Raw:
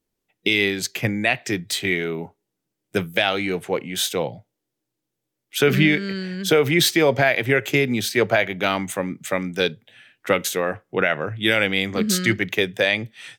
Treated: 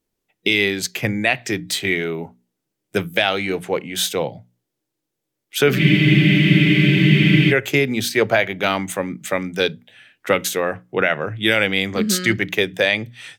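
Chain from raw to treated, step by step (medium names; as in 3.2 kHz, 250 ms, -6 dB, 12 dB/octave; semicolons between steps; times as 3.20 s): hum notches 60/120/180/240/300 Hz; spectral freeze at 5.80 s, 1.71 s; trim +2 dB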